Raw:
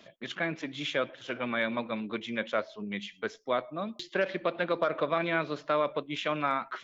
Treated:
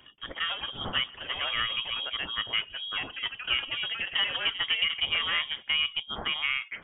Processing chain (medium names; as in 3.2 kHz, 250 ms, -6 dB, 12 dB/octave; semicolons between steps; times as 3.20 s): ever faster or slower copies 179 ms, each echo +4 st, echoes 2, each echo -6 dB; frequency inversion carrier 3.5 kHz